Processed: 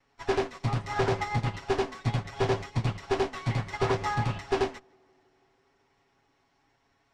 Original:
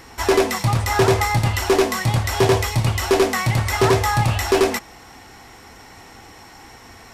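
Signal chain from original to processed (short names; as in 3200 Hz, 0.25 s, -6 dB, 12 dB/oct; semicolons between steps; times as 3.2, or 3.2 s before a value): minimum comb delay 7.2 ms; air absorption 110 m; limiter -12.5 dBFS, peak gain reduction 4.5 dB; on a send: tape echo 0.161 s, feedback 83%, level -14.5 dB, low-pass 1400 Hz; on the sum: upward expander 2.5:1, over -31 dBFS; gain -3.5 dB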